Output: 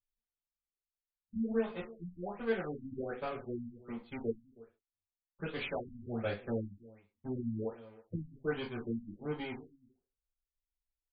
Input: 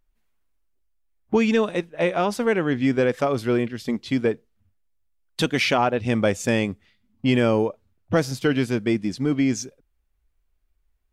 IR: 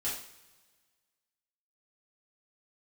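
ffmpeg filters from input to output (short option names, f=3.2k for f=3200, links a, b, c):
-filter_complex "[0:a]aeval=exprs='0.376*(cos(1*acos(clip(val(0)/0.376,-1,1)))-cos(1*PI/2))+0.106*(cos(3*acos(clip(val(0)/0.376,-1,1)))-cos(3*PI/2))+0.00335*(cos(7*acos(clip(val(0)/0.376,-1,1)))-cos(7*PI/2))+0.00531*(cos(8*acos(clip(val(0)/0.376,-1,1)))-cos(8*PI/2))':c=same,asoftclip=type=tanh:threshold=-19.5dB,aecho=1:1:320:0.0944[a];[1:a]atrim=start_sample=2205,afade=t=out:st=0.34:d=0.01,atrim=end_sample=15435,asetrate=79380,aresample=44100[b];[a][b]afir=irnorm=-1:irlink=0,afftfilt=real='re*lt(b*sr/1024,270*pow(4900/270,0.5+0.5*sin(2*PI*1.3*pts/sr)))':imag='im*lt(b*sr/1024,270*pow(4900/270,0.5+0.5*sin(2*PI*1.3*pts/sr)))':win_size=1024:overlap=0.75,volume=-3.5dB"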